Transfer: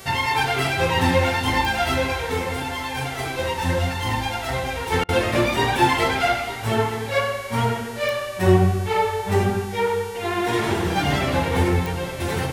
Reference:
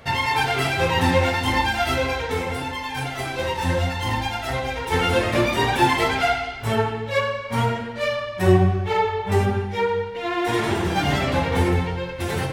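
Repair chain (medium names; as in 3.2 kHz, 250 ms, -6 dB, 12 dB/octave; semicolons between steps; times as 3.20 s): de-click; de-hum 385.1 Hz, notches 35; interpolate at 5.04 s, 46 ms; inverse comb 909 ms -14.5 dB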